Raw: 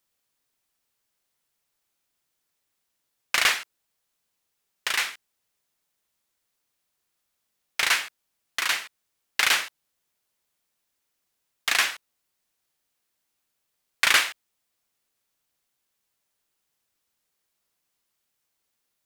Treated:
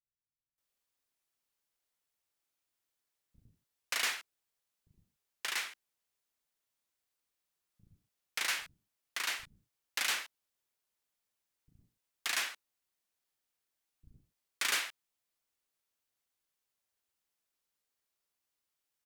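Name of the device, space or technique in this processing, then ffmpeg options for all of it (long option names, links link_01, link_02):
one-band saturation: -filter_complex "[0:a]acrossover=split=270|4500[link_01][link_02][link_03];[link_02]asoftclip=type=tanh:threshold=-21dB[link_04];[link_01][link_04][link_03]amix=inputs=3:normalize=0,acrossover=split=170[link_05][link_06];[link_06]adelay=580[link_07];[link_05][link_07]amix=inputs=2:normalize=0,volume=-8.5dB"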